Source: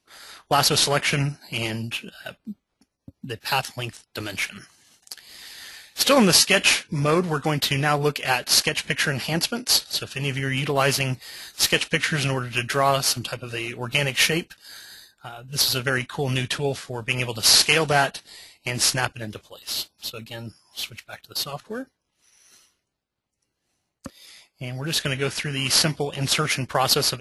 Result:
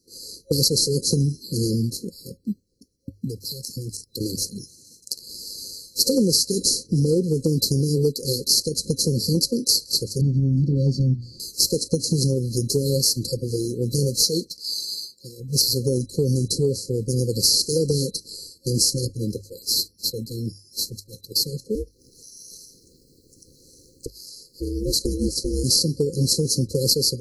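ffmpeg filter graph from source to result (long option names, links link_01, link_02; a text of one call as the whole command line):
ffmpeg -i in.wav -filter_complex "[0:a]asettb=1/sr,asplit=3[link_01][link_02][link_03];[link_01]atrim=end=3.274[link_04];[link_02]atrim=start=3.27:end=4.21,asetpts=PTS-STARTPTS,afade=type=in:duration=0.004:curve=qsin,afade=type=out:start_time=0.936:duration=0.004:curve=qsin,bass=frequency=250:gain=4,treble=frequency=4000:gain=4,acompressor=threshold=-34dB:ratio=6:attack=3.2:release=140:knee=1:detection=peak[link_05];[link_03]atrim=start=4.206[link_06];[link_04][link_05]acrossfade=duration=0.004:curve1=hsin:curve2=qsin[link_07];[link_07][link_06]acrossfade=duration=0.004:curve1=qsin:curve2=hsin,asettb=1/sr,asplit=3[link_08][link_09][link_10];[link_08]atrim=end=10.214[link_11];[link_09]atrim=start=10.21:end=11.4,asetpts=PTS-STARTPTS,afade=type=in:duration=0.004:curve=qsin,afade=type=out:start_time=1.186:duration=0.004:curve=qsin,lowpass=1900,bandreject=frequency=60:width_type=h:width=6,bandreject=frequency=120:width_type=h:width=6,bandreject=frequency=180:width_type=h:width=6,bandreject=frequency=240:width_type=h:width=6,bandreject=frequency=300:width_type=h:width=6,bandreject=frequency=360:width_type=h:width=6,aecho=1:1:1.1:0.93,atrim=end_sample=52479[link_12];[link_10]atrim=start=11.396[link_13];[link_11][link_12]acrossfade=duration=0.004:curve1=hsin:curve2=qsin[link_14];[link_14][link_13]acrossfade=duration=0.004:curve1=qsin:curve2=hsin,asettb=1/sr,asplit=3[link_15][link_16][link_17];[link_15]atrim=end=14.234[link_18];[link_16]atrim=start=14.23:end=15.4,asetpts=PTS-STARTPTS,afade=type=in:duration=0.004:curve=qsin,afade=type=out:start_time=1.166:duration=0.004:curve=qsin,highpass=frequency=210:poles=1,equalizer=frequency=3800:width_type=o:width=1.6:gain=10[link_19];[link_17]atrim=start=15.396[link_20];[link_18][link_19]acrossfade=duration=0.004:curve1=hsin:curve2=qsin[link_21];[link_21][link_20]acrossfade=duration=0.004:curve1=qsin:curve2=hsin,asettb=1/sr,asplit=3[link_22][link_23][link_24];[link_22]atrim=end=21.754[link_25];[link_23]atrim=start=21.75:end=25.64,asetpts=PTS-STARTPTS,afade=type=in:duration=0.004:curve=qsin,afade=type=out:start_time=3.886:duration=0.004:curve=qsin,acompressor=mode=upward:threshold=-37dB:ratio=2.5:attack=3.2:release=140:knee=2.83:detection=peak,aeval=exprs='val(0)*sin(2*PI*200*n/s)':channel_layout=same[link_26];[link_24]atrim=start=25.636[link_27];[link_25][link_26]acrossfade=duration=0.004:curve1=hsin:curve2=qsin[link_28];[link_28][link_27]acrossfade=duration=0.004:curve1=qsin:curve2=hsin,bandreject=frequency=50:width_type=h:width=6,bandreject=frequency=100:width_type=h:width=6,afftfilt=real='re*(1-between(b*sr/4096,540,4000))':imag='im*(1-between(b*sr/4096,540,4000))':win_size=4096:overlap=0.75,acompressor=threshold=-25dB:ratio=6,volume=8.5dB" out.wav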